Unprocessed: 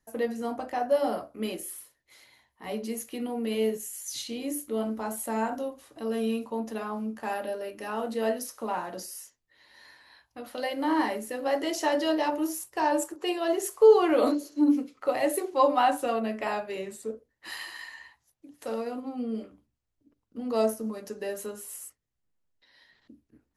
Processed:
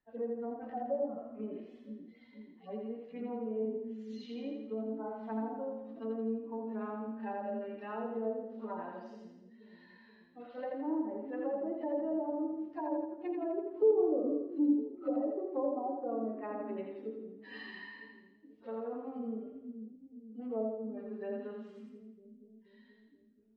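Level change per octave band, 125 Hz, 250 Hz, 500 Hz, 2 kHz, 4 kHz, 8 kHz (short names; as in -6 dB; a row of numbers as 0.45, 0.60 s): n/a, -6.0 dB, -8.0 dB, -15.0 dB, under -20 dB, under -40 dB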